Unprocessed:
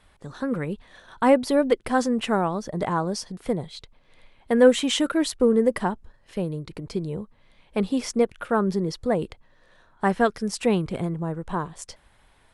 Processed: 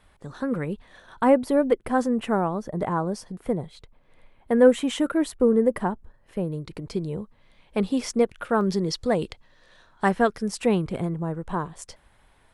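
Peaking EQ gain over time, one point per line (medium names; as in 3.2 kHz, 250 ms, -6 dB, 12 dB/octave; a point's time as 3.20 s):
peaking EQ 4.7 kHz 2 oct
-3 dB
from 1.24 s -10.5 dB
from 6.53 s -0.5 dB
from 8.61 s +7 dB
from 10.09 s -3 dB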